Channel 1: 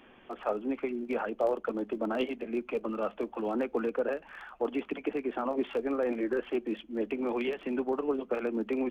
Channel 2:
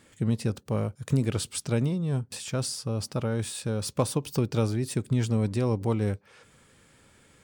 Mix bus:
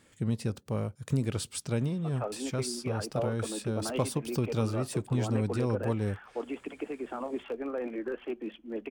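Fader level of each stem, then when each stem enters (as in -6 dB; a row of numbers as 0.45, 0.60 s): -4.5, -4.0 dB; 1.75, 0.00 s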